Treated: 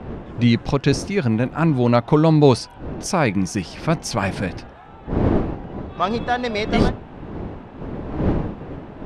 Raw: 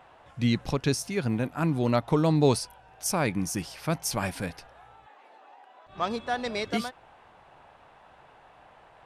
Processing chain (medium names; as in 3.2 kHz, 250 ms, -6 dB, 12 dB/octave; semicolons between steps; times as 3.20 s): wind noise 330 Hz -36 dBFS; distance through air 84 m; trim +8.5 dB